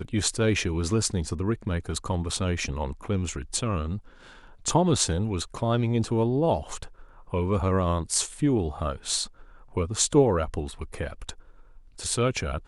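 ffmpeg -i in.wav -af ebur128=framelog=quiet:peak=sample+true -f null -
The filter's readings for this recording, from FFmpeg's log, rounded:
Integrated loudness:
  I:         -26.7 LUFS
  Threshold: -37.2 LUFS
Loudness range:
  LRA:         2.8 LU
  Threshold: -47.2 LUFS
  LRA low:   -28.8 LUFS
  LRA high:  -26.0 LUFS
Sample peak:
  Peak:       -8.6 dBFS
True peak:
  Peak:       -8.6 dBFS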